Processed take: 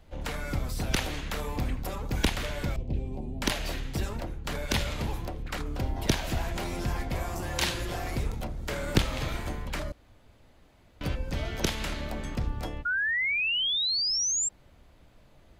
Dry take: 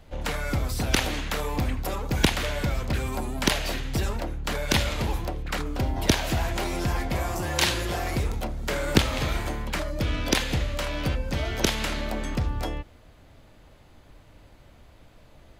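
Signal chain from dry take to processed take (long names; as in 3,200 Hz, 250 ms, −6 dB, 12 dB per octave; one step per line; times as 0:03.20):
sub-octave generator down 1 octave, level −3 dB
0:02.76–0:03.42: drawn EQ curve 330 Hz 0 dB, 790 Hz −7 dB, 1,400 Hz −30 dB, 2,600 Hz −12 dB, 14,000 Hz −28 dB
0:09.92–0:11.01: fill with room tone
0:12.85–0:14.49: sound drawn into the spectrogram rise 1,400–7,600 Hz −22 dBFS
level −5.5 dB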